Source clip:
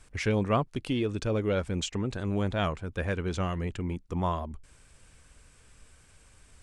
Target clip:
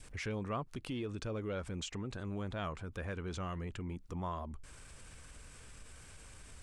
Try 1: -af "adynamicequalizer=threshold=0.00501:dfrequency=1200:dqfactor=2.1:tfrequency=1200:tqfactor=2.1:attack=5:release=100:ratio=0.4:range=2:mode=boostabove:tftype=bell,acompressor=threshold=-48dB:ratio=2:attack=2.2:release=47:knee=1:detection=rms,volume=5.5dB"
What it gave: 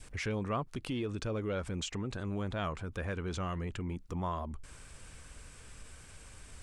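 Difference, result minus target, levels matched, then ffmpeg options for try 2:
downward compressor: peak gain reduction −4 dB
-af "adynamicequalizer=threshold=0.00501:dfrequency=1200:dqfactor=2.1:tfrequency=1200:tqfactor=2.1:attack=5:release=100:ratio=0.4:range=2:mode=boostabove:tftype=bell,acompressor=threshold=-55.5dB:ratio=2:attack=2.2:release=47:knee=1:detection=rms,volume=5.5dB"

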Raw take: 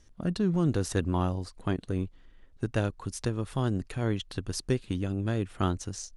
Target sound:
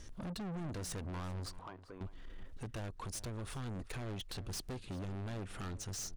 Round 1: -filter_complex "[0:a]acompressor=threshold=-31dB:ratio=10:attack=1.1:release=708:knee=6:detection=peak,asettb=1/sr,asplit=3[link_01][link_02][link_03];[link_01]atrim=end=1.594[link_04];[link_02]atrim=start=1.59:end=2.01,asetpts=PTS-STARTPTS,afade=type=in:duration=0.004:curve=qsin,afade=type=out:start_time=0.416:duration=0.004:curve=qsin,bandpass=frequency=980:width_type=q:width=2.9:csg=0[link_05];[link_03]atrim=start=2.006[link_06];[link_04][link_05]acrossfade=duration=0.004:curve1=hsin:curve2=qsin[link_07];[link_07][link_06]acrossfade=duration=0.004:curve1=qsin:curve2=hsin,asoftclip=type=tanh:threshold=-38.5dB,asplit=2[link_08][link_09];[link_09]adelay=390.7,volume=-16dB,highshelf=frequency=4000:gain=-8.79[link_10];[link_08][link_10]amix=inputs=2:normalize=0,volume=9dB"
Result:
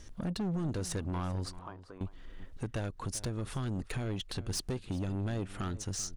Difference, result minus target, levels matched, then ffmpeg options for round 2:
soft clipping: distortion −6 dB
-filter_complex "[0:a]acompressor=threshold=-31dB:ratio=10:attack=1.1:release=708:knee=6:detection=peak,asettb=1/sr,asplit=3[link_01][link_02][link_03];[link_01]atrim=end=1.594[link_04];[link_02]atrim=start=1.59:end=2.01,asetpts=PTS-STARTPTS,afade=type=in:duration=0.004:curve=qsin,afade=type=out:start_time=0.416:duration=0.004:curve=qsin,bandpass=frequency=980:width_type=q:width=2.9:csg=0[link_05];[link_03]atrim=start=2.006[link_06];[link_04][link_05]acrossfade=duration=0.004:curve1=hsin:curve2=qsin[link_07];[link_07][link_06]acrossfade=duration=0.004:curve1=qsin:curve2=hsin,asoftclip=type=tanh:threshold=-48.5dB,asplit=2[link_08][link_09];[link_09]adelay=390.7,volume=-16dB,highshelf=frequency=4000:gain=-8.79[link_10];[link_08][link_10]amix=inputs=2:normalize=0,volume=9dB"

